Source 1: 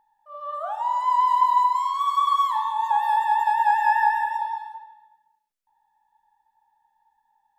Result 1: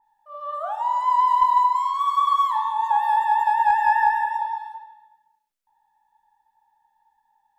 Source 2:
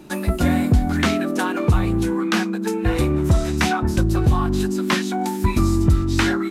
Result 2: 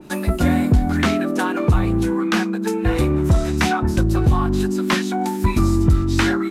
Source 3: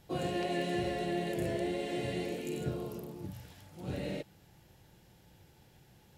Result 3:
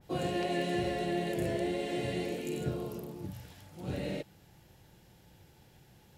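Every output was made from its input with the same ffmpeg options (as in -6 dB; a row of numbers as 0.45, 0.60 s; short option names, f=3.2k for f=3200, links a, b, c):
-filter_complex "[0:a]asplit=2[a][b];[b]aeval=exprs='clip(val(0),-1,0.2)':c=same,volume=-5dB[c];[a][c]amix=inputs=2:normalize=0,adynamicequalizer=threshold=0.0282:dfrequency=2400:dqfactor=0.7:tfrequency=2400:tqfactor=0.7:attack=5:release=100:ratio=0.375:range=2:mode=cutabove:tftype=highshelf,volume=-2.5dB"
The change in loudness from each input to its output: +1.0, +1.0, +1.5 LU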